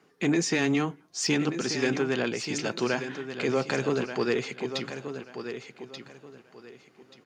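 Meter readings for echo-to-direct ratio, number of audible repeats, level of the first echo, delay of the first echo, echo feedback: -9.0 dB, 3, -9.5 dB, 1.183 s, 25%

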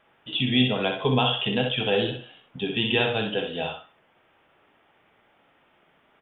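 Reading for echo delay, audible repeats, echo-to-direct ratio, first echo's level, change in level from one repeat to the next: 63 ms, 2, -6.0 dB, -6.0 dB, -15.0 dB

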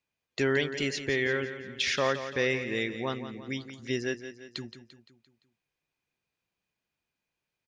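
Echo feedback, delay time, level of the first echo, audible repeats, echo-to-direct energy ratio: 50%, 0.172 s, -11.0 dB, 4, -9.5 dB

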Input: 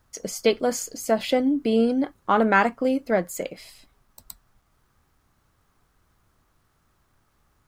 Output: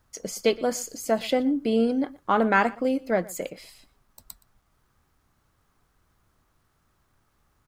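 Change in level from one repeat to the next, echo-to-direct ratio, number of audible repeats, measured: no steady repeat, -21.5 dB, 1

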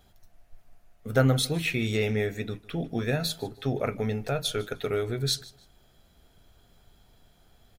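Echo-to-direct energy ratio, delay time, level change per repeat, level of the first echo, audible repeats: -20.5 dB, 0.152 s, -12.0 dB, -21.0 dB, 2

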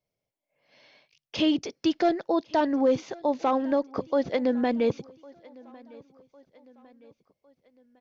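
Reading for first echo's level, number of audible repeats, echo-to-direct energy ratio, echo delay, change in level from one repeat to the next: -24.0 dB, 2, -23.0 dB, 1.105 s, -6.0 dB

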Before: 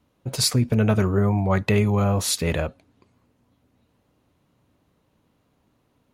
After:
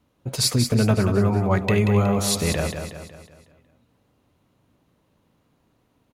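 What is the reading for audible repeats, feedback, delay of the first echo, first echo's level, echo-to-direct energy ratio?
5, 48%, 0.184 s, -7.0 dB, -6.0 dB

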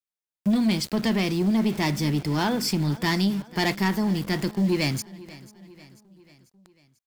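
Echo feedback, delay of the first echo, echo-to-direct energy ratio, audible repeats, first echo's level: 54%, 0.492 s, -18.5 dB, 3, -20.0 dB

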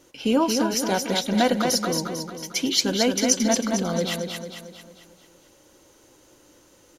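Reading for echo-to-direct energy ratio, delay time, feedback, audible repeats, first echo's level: -4.0 dB, 0.224 s, 49%, 5, -5.0 dB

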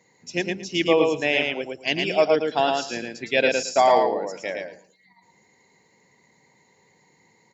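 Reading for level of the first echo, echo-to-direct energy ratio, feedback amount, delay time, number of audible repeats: -3.5 dB, -3.5 dB, 17%, 0.112 s, 3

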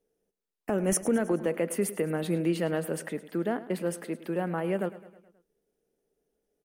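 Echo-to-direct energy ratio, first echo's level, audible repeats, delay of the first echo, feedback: -14.5 dB, -16.0 dB, 4, 0.106 s, 55%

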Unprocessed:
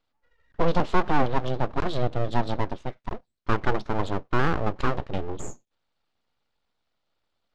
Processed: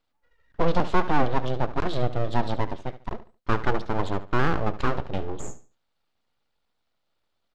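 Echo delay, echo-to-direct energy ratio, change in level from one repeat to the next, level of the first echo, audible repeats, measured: 72 ms, -14.0 dB, -11.5 dB, -14.5 dB, 2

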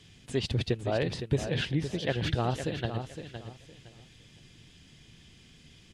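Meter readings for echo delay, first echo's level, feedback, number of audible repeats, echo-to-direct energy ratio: 0.512 s, -9.0 dB, 24%, 3, -8.5 dB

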